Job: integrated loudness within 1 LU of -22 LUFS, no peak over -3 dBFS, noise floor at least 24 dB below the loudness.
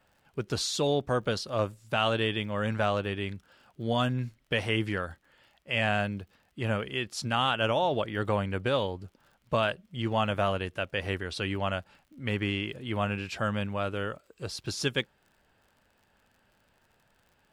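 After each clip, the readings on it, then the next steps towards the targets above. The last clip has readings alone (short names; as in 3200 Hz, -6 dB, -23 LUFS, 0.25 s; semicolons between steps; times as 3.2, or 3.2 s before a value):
ticks 51/s; loudness -30.5 LUFS; peak -12.5 dBFS; loudness target -22.0 LUFS
-> de-click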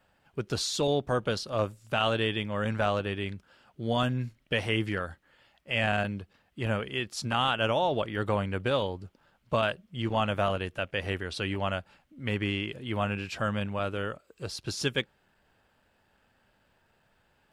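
ticks 0.17/s; loudness -30.5 LUFS; peak -12.5 dBFS; loudness target -22.0 LUFS
-> gain +8.5 dB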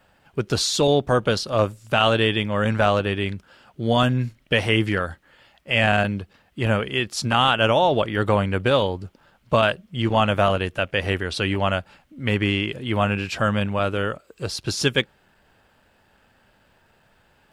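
loudness -22.0 LUFS; peak -4.0 dBFS; noise floor -61 dBFS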